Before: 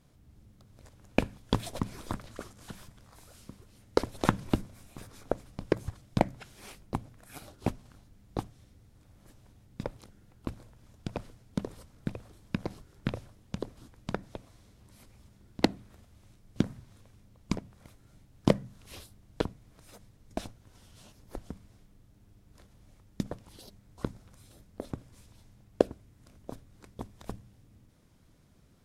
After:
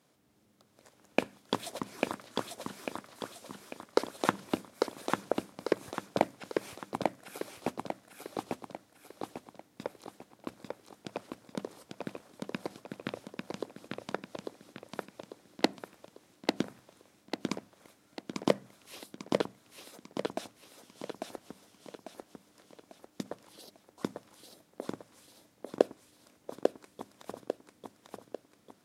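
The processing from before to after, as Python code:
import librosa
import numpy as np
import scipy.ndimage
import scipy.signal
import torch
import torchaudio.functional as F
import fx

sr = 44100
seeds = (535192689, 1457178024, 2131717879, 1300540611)

p1 = scipy.signal.sosfilt(scipy.signal.butter(2, 300.0, 'highpass', fs=sr, output='sos'), x)
y = p1 + fx.echo_feedback(p1, sr, ms=846, feedback_pct=44, wet_db=-3, dry=0)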